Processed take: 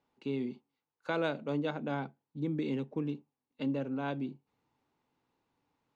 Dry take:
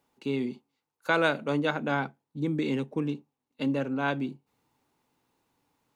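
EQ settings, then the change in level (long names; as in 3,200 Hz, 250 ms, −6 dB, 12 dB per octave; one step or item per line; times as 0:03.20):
dynamic equaliser 1,600 Hz, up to −7 dB, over −41 dBFS, Q 0.82
high-frequency loss of the air 110 metres
−4.5 dB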